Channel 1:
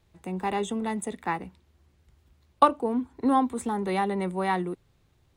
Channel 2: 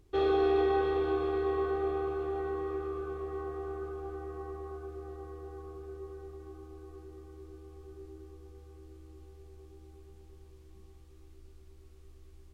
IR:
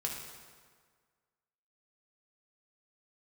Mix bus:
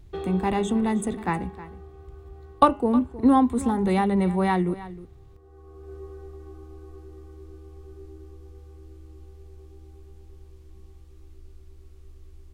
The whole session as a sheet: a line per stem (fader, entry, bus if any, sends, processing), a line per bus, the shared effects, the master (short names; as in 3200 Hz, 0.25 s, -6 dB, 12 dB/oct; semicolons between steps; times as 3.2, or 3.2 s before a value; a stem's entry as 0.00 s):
+1.0 dB, 0.00 s, no send, echo send -16.5 dB, low shelf 200 Hz +11.5 dB
+2.0 dB, 0.00 s, no send, no echo send, compressor, threshold -32 dBFS, peak gain reduction 8.5 dB; auto duck -17 dB, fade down 1.95 s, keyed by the first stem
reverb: off
echo: echo 0.313 s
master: low shelf 110 Hz +7 dB; de-hum 206.7 Hz, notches 15